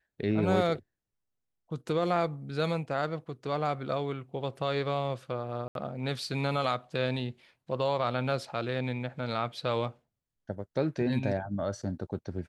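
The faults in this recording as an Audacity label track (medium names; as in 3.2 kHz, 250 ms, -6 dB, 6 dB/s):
5.680000	5.750000	dropout 72 ms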